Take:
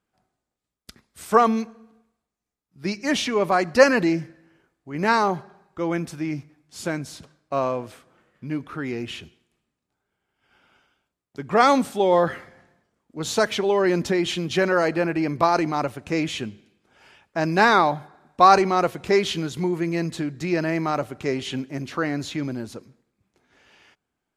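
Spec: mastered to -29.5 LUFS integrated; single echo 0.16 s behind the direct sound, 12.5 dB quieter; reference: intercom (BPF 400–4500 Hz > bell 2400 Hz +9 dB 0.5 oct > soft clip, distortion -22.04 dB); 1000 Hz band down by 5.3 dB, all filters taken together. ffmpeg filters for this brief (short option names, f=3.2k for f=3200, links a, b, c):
-af "highpass=400,lowpass=4.5k,equalizer=f=1k:t=o:g=-7.5,equalizer=f=2.4k:t=o:w=0.5:g=9,aecho=1:1:160:0.237,asoftclip=threshold=-7.5dB,volume=-3.5dB"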